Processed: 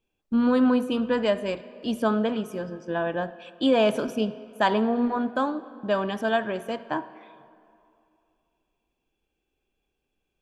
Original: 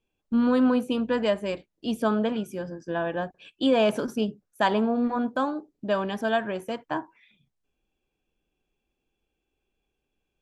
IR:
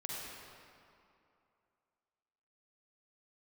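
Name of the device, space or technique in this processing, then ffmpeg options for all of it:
filtered reverb send: -filter_complex "[0:a]asplit=2[s0][s1];[s1]highpass=170,lowpass=6100[s2];[1:a]atrim=start_sample=2205[s3];[s2][s3]afir=irnorm=-1:irlink=0,volume=0.2[s4];[s0][s4]amix=inputs=2:normalize=0"

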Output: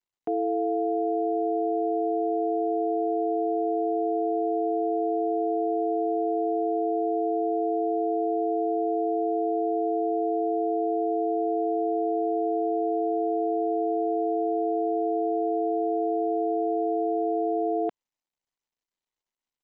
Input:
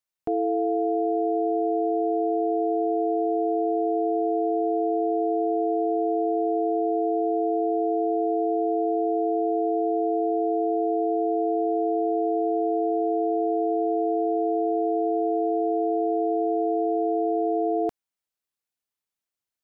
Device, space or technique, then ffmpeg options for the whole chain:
Bluetooth headset: -af "highpass=220,aresample=8000,aresample=44100,volume=0.841" -ar 16000 -c:a sbc -b:a 64k

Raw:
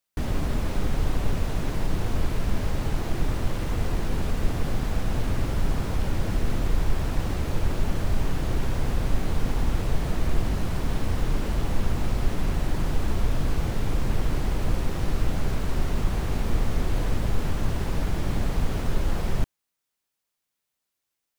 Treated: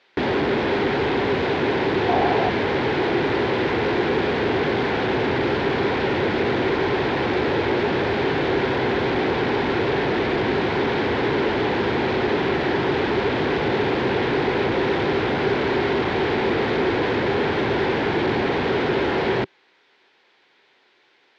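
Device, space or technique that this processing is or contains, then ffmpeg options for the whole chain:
overdrive pedal into a guitar cabinet: -filter_complex "[0:a]asplit=2[s0][s1];[s1]highpass=f=720:p=1,volume=200,asoftclip=type=tanh:threshold=0.376[s2];[s0][s2]amix=inputs=2:normalize=0,lowpass=f=2200:p=1,volume=0.501,highpass=110,equalizer=f=180:t=q:w=4:g=-6,equalizer=f=390:t=q:w=4:g=8,equalizer=f=630:t=q:w=4:g=-6,equalizer=f=1200:t=q:w=4:g=-9,equalizer=f=2800:t=q:w=4:g=-4,lowpass=f=3800:w=0.5412,lowpass=f=3800:w=1.3066,asettb=1/sr,asplit=3[s3][s4][s5];[s3]atrim=end=2.084[s6];[s4]atrim=start=2.08:end=2.49,asetpts=PTS-STARTPTS,afade=t=in:d=0.004:c=qsin,afade=t=out:st=0.406:d=0.004:c=qsin,equalizer=f=740:t=o:w=0.39:g=13.5[s7];[s5]atrim=start=2.486[s8];[s6][s7]acrossfade=d=0.004:c1=hsin:c2=qsin[s9];[s9][s8]acrossfade=d=0.004:c1=qsin:c2=hsin,volume=0.631"

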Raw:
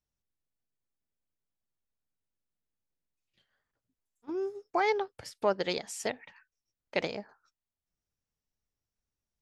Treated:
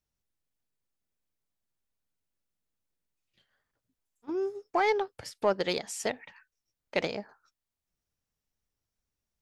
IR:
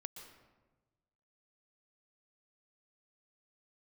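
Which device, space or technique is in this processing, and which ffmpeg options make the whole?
parallel distortion: -filter_complex "[0:a]asplit=2[s0][s1];[s1]asoftclip=type=hard:threshold=0.0422,volume=0.316[s2];[s0][s2]amix=inputs=2:normalize=0"

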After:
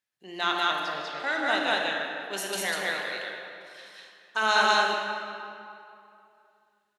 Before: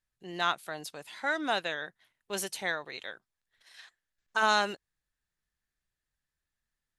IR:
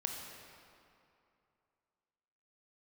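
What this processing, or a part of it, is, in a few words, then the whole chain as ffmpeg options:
stadium PA: -filter_complex "[0:a]asettb=1/sr,asplit=3[s0][s1][s2];[s0]atrim=end=0.604[s3];[s1]atrim=start=0.6:end=1.2,asetpts=PTS-STARTPTS,afade=t=in:d=0.004:c=qsin,afade=t=out:st=0.596:d=0.004:c=qsin,lowpass=f=5400:w=0.5412,lowpass=f=5400:w=1.3066[s4];[s2]atrim=start=1.196[s5];[s3][s4]acrossfade=d=0.004:c1=hsin:c2=qsin[s6];[s6][s5]acrossfade=d=0.004:c1=qsin:c2=hsin,highpass=200,equalizer=f=2800:t=o:w=1.2:g=4,aecho=1:1:157.4|195.3:0.316|1[s7];[1:a]atrim=start_sample=2205[s8];[s7][s8]afir=irnorm=-1:irlink=0"

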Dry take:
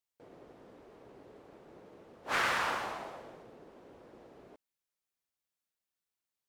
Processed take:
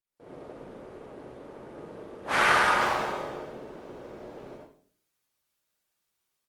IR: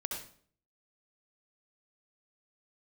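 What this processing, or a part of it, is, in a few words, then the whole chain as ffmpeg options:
speakerphone in a meeting room: -filter_complex "[0:a]asettb=1/sr,asplit=3[s0][s1][s2];[s0]atrim=end=1.664[s3];[s1]atrim=start=1.66:end=3.42,asetpts=PTS-STARTPTS,afade=t=in:d=0.004:c=qsin,afade=t=out:st=1.756:d=0.004:c=qsin,asplit=2[s4][s5];[s5]adelay=42,volume=0.531[s6];[s4][s6]amix=inputs=2:normalize=0,atrim=end_sample=77616[s7];[s2]atrim=start=3.416[s8];[s3][s7]acrossfade=d=0.004:c1=hsin:c2=qsin[s9];[s9][s8]acrossfade=d=0.004:c1=qsin:c2=hsin[s10];[1:a]atrim=start_sample=2205[s11];[s10][s11]afir=irnorm=-1:irlink=0,dynaudnorm=f=140:g=3:m=6.31,volume=0.473" -ar 48000 -c:a libopus -b:a 32k

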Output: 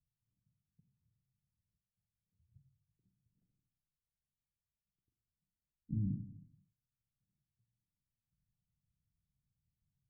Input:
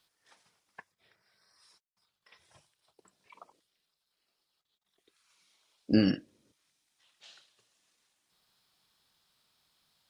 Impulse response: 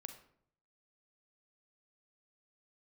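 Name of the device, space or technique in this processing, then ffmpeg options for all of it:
club heard from the street: -filter_complex "[0:a]alimiter=limit=0.1:level=0:latency=1,lowpass=f=140:w=0.5412,lowpass=f=140:w=1.3066[s0];[1:a]atrim=start_sample=2205[s1];[s0][s1]afir=irnorm=-1:irlink=0,volume=3.35"

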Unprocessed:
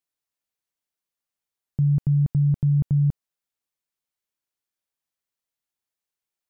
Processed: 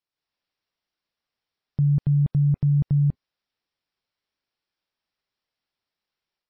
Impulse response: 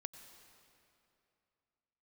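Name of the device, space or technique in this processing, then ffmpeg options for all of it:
low-bitrate web radio: -af "dynaudnorm=f=130:g=3:m=2.11,alimiter=limit=0.178:level=0:latency=1:release=71" -ar 16000 -c:a libmp3lame -b:a 24k

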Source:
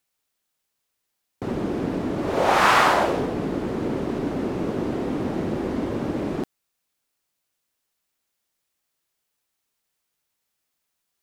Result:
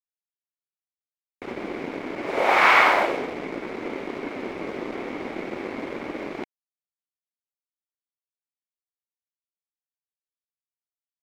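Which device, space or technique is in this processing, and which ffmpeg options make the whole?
pocket radio on a weak battery: -af "highpass=320,lowpass=4300,aeval=exprs='sgn(val(0))*max(abs(val(0))-0.0141,0)':c=same,equalizer=f=2200:t=o:w=0.28:g=12"

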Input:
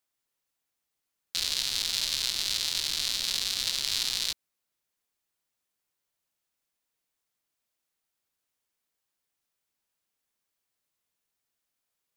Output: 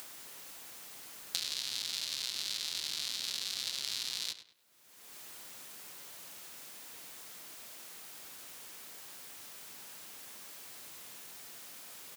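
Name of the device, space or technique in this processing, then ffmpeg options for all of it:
upward and downward compression: -filter_complex "[0:a]highpass=130,acompressor=mode=upward:threshold=0.0178:ratio=2.5,acompressor=threshold=0.01:ratio=6,asplit=2[s0][s1];[s1]adelay=101,lowpass=f=3800:p=1,volume=0.282,asplit=2[s2][s3];[s3]adelay=101,lowpass=f=3800:p=1,volume=0.35,asplit=2[s4][s5];[s5]adelay=101,lowpass=f=3800:p=1,volume=0.35,asplit=2[s6][s7];[s7]adelay=101,lowpass=f=3800:p=1,volume=0.35[s8];[s0][s2][s4][s6][s8]amix=inputs=5:normalize=0,volume=2.37"

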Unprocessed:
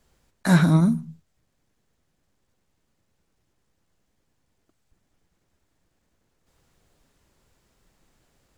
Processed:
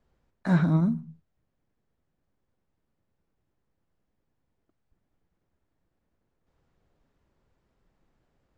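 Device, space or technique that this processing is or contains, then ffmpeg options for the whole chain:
through cloth: -af "lowpass=7000,highshelf=f=2800:g=-14,volume=0.562"

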